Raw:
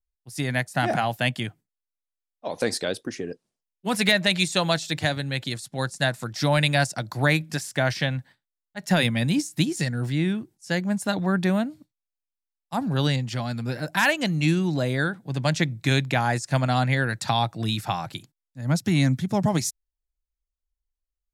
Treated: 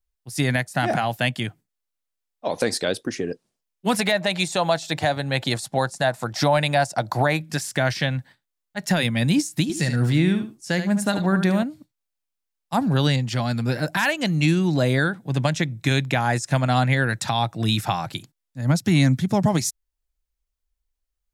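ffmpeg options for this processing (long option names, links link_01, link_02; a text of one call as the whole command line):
ffmpeg -i in.wav -filter_complex "[0:a]asettb=1/sr,asplit=3[link_01][link_02][link_03];[link_01]atrim=end=3.994[link_04];[link_02]atrim=start=3.99:end=7.4,asetpts=PTS-STARTPTS,afade=type=in:duration=0.004:curve=qsin,afade=type=out:start_time=3.406:duration=0.004:curve=qsin,equalizer=frequency=760:width=1.1:gain=10.5[link_05];[link_03]atrim=start=7.396[link_06];[link_04][link_05]acrossfade=duration=0.004:curve1=hsin:curve2=qsin[link_07];[link_07][link_06]acrossfade=duration=0.004:curve1=qsin:curve2=hsin,asettb=1/sr,asplit=3[link_08][link_09][link_10];[link_08]atrim=end=9.624[link_11];[link_09]atrim=start=9.62:end=11.63,asetpts=PTS-STARTPTS,afade=type=in:duration=0.004:curve=qsin,afade=type=out:start_time=2.006:duration=0.004:curve=qsin,aecho=1:1:74|148:0.335|0.0502,atrim=end_sample=88641[link_12];[link_10]atrim=start=11.626[link_13];[link_11][link_12]acrossfade=duration=0.004:curve1=hsin:curve2=qsin[link_14];[link_14][link_13]acrossfade=duration=0.004:curve1=qsin:curve2=hsin,asettb=1/sr,asplit=3[link_15][link_16][link_17];[link_15]atrim=end=15.224[link_18];[link_16]atrim=start=15.22:end=17.86,asetpts=PTS-STARTPTS,afade=type=in:duration=0.004:curve=qsin,afade=type=out:start_time=2.636:duration=0.004:curve=qsin,bandreject=frequency=4500:width=9.8[link_19];[link_17]atrim=start=17.856[link_20];[link_18][link_19]acrossfade=duration=0.004:curve1=hsin:curve2=qsin[link_21];[link_21][link_20]acrossfade=duration=0.004:curve1=qsin:curve2=hsin,alimiter=limit=-14.5dB:level=0:latency=1:release=468,volume=5.5dB" out.wav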